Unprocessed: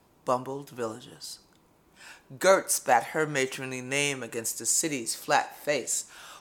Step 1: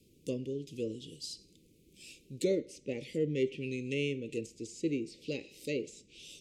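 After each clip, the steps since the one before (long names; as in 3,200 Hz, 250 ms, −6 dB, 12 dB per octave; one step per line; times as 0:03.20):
inverse Chebyshev band-stop filter 690–1,700 Hz, stop band 40 dB
treble cut that deepens with the level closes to 1,800 Hz, closed at −29.5 dBFS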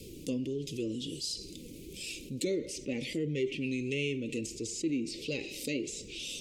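dynamic equaliser 490 Hz, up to −7 dB, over −46 dBFS, Q 2
flanger 1.5 Hz, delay 1.8 ms, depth 2.4 ms, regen +44%
envelope flattener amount 50%
level +2.5 dB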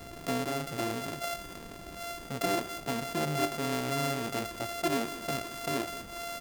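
samples sorted by size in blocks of 64 samples
single-tap delay 198 ms −16.5 dB
level +2 dB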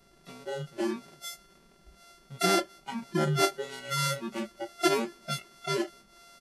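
hearing-aid frequency compression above 3,700 Hz 1.5 to 1
comb filter 5.2 ms, depth 65%
noise reduction from a noise print of the clip's start 22 dB
level +5 dB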